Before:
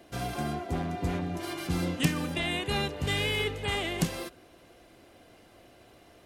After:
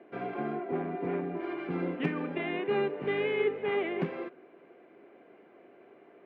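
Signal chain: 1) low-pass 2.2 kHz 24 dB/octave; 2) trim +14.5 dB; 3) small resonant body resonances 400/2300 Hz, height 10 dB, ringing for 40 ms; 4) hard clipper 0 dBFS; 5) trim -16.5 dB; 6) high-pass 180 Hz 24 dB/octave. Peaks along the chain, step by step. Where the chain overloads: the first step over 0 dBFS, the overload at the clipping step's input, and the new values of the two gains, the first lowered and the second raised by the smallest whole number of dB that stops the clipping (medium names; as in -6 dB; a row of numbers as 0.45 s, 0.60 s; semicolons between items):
-13.0 dBFS, +1.5 dBFS, +3.5 dBFS, 0.0 dBFS, -16.5 dBFS, -16.0 dBFS; step 2, 3.5 dB; step 2 +10.5 dB, step 5 -12.5 dB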